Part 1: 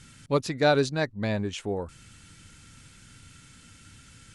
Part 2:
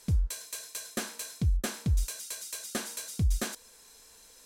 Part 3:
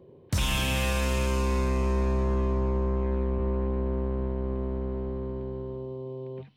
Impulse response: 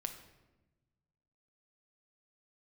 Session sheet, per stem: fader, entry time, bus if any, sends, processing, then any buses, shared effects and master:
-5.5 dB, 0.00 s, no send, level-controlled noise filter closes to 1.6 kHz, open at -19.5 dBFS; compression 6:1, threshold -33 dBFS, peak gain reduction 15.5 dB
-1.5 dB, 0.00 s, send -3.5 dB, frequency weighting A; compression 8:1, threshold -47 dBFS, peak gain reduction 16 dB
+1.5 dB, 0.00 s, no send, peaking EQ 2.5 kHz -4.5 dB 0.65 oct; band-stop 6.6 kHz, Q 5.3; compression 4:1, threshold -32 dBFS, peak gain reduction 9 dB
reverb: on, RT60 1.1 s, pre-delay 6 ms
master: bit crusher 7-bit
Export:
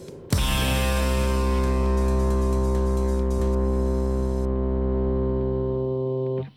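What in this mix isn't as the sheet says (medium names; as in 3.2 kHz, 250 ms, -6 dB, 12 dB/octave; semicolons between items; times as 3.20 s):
stem 3 +1.5 dB -> +12.0 dB; master: missing bit crusher 7-bit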